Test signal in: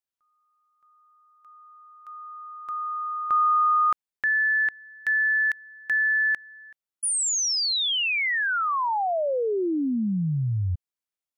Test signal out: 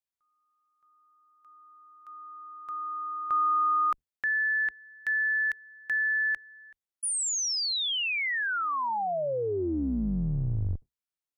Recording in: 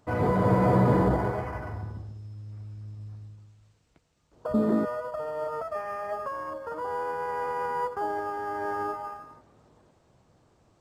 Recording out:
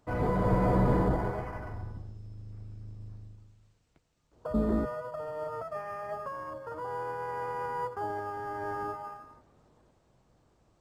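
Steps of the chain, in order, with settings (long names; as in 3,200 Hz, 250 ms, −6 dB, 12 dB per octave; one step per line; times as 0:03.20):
sub-octave generator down 2 octaves, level −4 dB
level −4.5 dB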